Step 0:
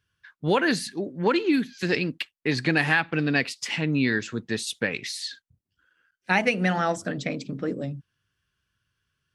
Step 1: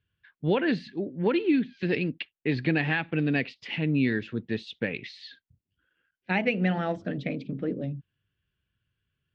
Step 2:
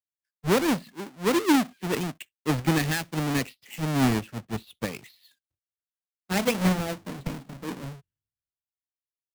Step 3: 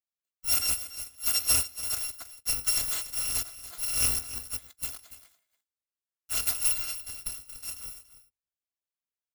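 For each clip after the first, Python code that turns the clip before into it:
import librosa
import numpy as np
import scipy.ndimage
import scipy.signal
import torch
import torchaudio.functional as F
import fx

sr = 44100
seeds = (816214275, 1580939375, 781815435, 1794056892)

y1 = scipy.signal.sosfilt(scipy.signal.butter(4, 3200.0, 'lowpass', fs=sr, output='sos'), x)
y1 = fx.peak_eq(y1, sr, hz=1200.0, db=-10.0, octaves=1.5)
y2 = fx.halfwave_hold(y1, sr)
y2 = fx.band_widen(y2, sr, depth_pct=100)
y2 = F.gain(torch.from_numpy(y2), -4.5).numpy()
y3 = fx.bit_reversed(y2, sr, seeds[0], block=256)
y3 = y3 + 10.0 ** (-14.5 / 20.0) * np.pad(y3, (int(286 * sr / 1000.0), 0))[:len(y3)]
y3 = F.gain(torch.from_numpy(y3), -4.0).numpy()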